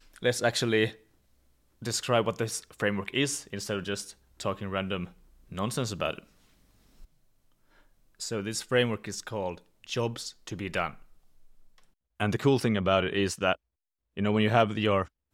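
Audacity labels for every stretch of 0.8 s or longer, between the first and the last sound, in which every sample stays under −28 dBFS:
0.880000	1.860000	silence
6.180000	8.220000	silence
10.880000	12.200000	silence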